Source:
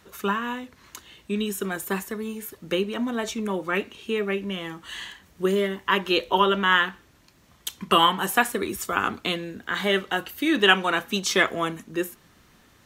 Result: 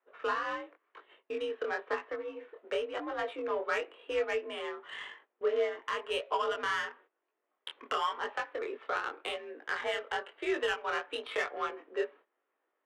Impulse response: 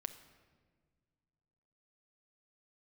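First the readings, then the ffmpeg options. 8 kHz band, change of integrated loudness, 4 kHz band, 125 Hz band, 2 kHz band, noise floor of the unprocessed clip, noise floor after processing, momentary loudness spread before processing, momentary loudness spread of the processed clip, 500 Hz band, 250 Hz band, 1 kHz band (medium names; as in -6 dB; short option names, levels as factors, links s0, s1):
-20.0 dB, -10.5 dB, -14.5 dB, under -25 dB, -11.0 dB, -58 dBFS, -84 dBFS, 16 LU, 9 LU, -6.5 dB, -19.0 dB, -10.0 dB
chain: -af "acompressor=threshold=0.0631:ratio=2.5,highpass=f=350:t=q:w=0.5412,highpass=f=350:t=q:w=1.307,lowpass=f=3400:t=q:w=0.5176,lowpass=f=3400:t=q:w=0.7071,lowpass=f=3400:t=q:w=1.932,afreqshift=55,agate=range=0.141:threshold=0.00316:ratio=16:detection=peak,aeval=exprs='0.299*(cos(1*acos(clip(val(0)/0.299,-1,1)))-cos(1*PI/2))+0.0133*(cos(5*acos(clip(val(0)/0.299,-1,1)))-cos(5*PI/2))':c=same,alimiter=limit=0.133:level=0:latency=1:release=457,adynamicsmooth=sensitivity=2:basefreq=1700,flanger=delay=18.5:depth=7.5:speed=0.95"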